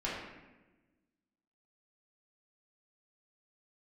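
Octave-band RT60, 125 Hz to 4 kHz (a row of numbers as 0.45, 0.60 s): 1.6, 1.7, 1.3, 1.0, 1.1, 0.75 s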